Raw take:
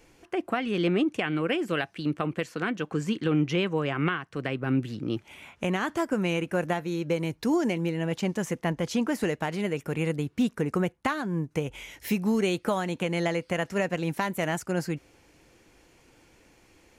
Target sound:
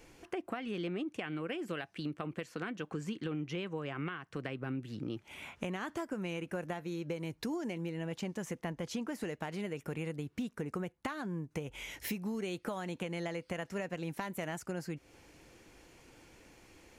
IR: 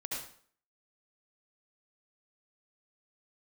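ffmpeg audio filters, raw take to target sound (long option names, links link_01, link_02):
-af "acompressor=threshold=-37dB:ratio=4"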